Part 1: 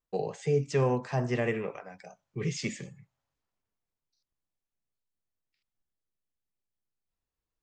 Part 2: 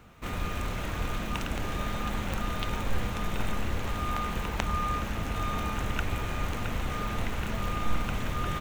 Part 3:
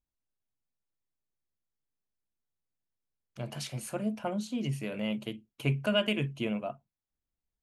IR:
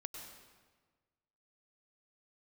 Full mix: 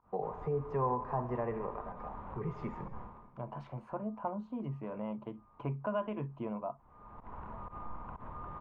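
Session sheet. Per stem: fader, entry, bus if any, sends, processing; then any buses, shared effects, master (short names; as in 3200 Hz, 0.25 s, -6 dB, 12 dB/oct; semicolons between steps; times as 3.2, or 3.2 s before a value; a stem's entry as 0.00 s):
-4.0 dB, 0.00 s, send -4.5 dB, dry
-14.0 dB, 0.00 s, no send, pump 125 bpm, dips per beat 1, -21 dB, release 0.109 s; auto duck -23 dB, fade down 0.35 s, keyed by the third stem
-2.0 dB, 0.00 s, no send, dry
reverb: on, RT60 1.4 s, pre-delay 92 ms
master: synth low-pass 1000 Hz, resonance Q 5.7; compressor 1.5:1, threshold -44 dBFS, peak gain reduction 9.5 dB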